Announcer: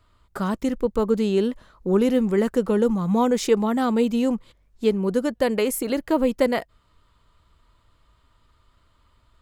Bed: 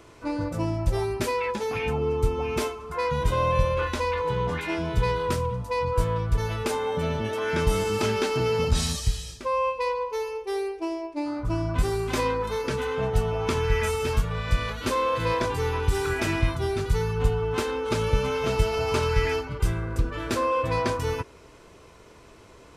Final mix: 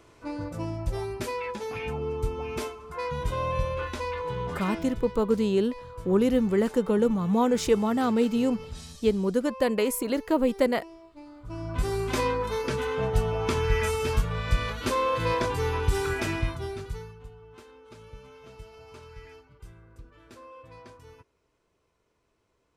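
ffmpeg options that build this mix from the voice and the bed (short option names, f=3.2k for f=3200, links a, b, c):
-filter_complex "[0:a]adelay=4200,volume=-3dB[a];[1:a]volume=10.5dB,afade=t=out:st=4.68:d=0.35:silence=0.266073,afade=t=in:st=11.41:d=0.6:silence=0.158489,afade=t=out:st=15.98:d=1.22:silence=0.0794328[b];[a][b]amix=inputs=2:normalize=0"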